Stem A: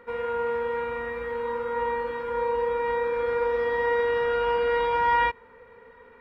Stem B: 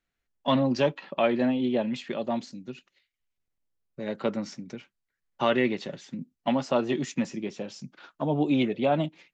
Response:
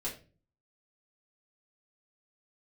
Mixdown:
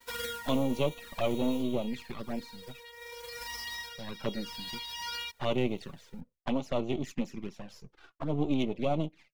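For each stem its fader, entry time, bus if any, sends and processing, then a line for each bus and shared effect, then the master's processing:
0:01.55 −2 dB → 0:01.76 −10 dB → 0:04.23 −10 dB → 0:04.70 −1 dB, 0.00 s, no send, spectral envelope flattened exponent 0.1; automatic ducking −11 dB, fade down 0.20 s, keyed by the second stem
−1.0 dB, 0.00 s, no send, gain on one half-wave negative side −12 dB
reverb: not used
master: downward expander −54 dBFS; high-shelf EQ 4,600 Hz −3 dB; flanger swept by the level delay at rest 3.3 ms, full sweep at −26.5 dBFS

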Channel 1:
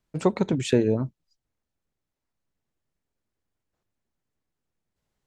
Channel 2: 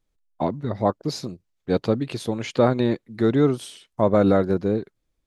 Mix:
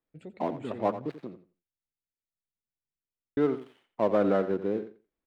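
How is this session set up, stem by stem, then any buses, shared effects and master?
−17.5 dB, 0.00 s, no send, echo send −17 dB, brickwall limiter −13.5 dBFS, peak gain reduction 5.5 dB; phaser with its sweep stopped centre 2,500 Hz, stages 4
−5.5 dB, 0.00 s, muted 0:01.59–0:03.37, no send, echo send −12.5 dB, gap after every zero crossing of 0.12 ms; three-way crossover with the lows and the highs turned down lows −17 dB, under 200 Hz, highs −21 dB, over 3,000 Hz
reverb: not used
echo: repeating echo 87 ms, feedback 17%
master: high-shelf EQ 7,000 Hz −4 dB

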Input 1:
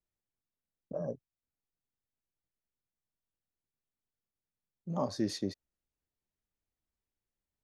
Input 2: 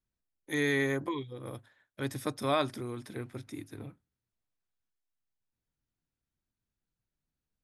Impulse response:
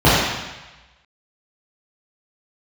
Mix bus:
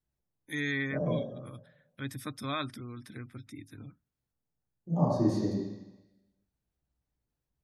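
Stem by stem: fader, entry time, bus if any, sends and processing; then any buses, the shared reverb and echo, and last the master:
−6.0 dB, 0.00 s, send −20 dB, parametric band 3,200 Hz −9 dB 1.3 octaves
−1.5 dB, 0.00 s, no send, notch filter 6,700 Hz, Q 27; gate on every frequency bin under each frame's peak −30 dB strong; flat-topped bell 580 Hz −9.5 dB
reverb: on, RT60 1.1 s, pre-delay 3 ms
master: no processing

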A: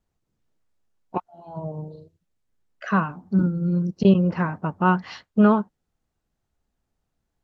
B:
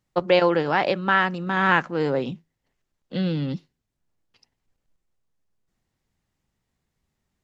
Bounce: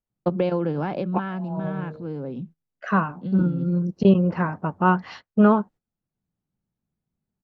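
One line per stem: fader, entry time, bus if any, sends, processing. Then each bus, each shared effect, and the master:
+2.5 dB, 0.00 s, no send, low-shelf EQ 280 Hz −4 dB
−1.5 dB, 0.10 s, no send, parametric band 180 Hz +15 dB 2.2 octaves; notch filter 1,900 Hz, Q 7.5; downward compressor, threshold −14 dBFS, peak gain reduction 7 dB; automatic ducking −12 dB, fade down 1.80 s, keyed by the first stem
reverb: not used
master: high-shelf EQ 2,400 Hz −8 dB; noise gate −42 dBFS, range −14 dB

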